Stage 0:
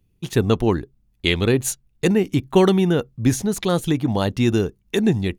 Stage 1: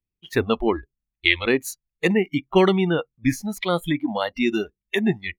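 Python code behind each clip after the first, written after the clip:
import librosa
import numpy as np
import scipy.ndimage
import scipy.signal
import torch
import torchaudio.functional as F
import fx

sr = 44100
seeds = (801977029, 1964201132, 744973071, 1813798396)

y = fx.noise_reduce_blind(x, sr, reduce_db=22)
y = fx.graphic_eq_10(y, sr, hz=(125, 2000, 8000), db=(-5, 8, -10))
y = y * librosa.db_to_amplitude(-1.0)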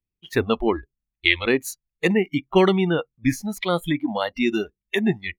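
y = x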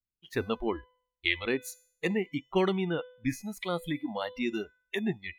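y = fx.comb_fb(x, sr, f0_hz=500.0, decay_s=0.58, harmonics='all', damping=0.0, mix_pct=60)
y = y * librosa.db_to_amplitude(-2.0)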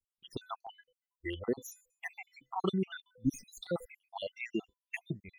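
y = fx.spec_dropout(x, sr, seeds[0], share_pct=72)
y = fx.filter_held_notch(y, sr, hz=3.0, low_hz=800.0, high_hz=4300.0)
y = y * librosa.db_to_amplitude(1.0)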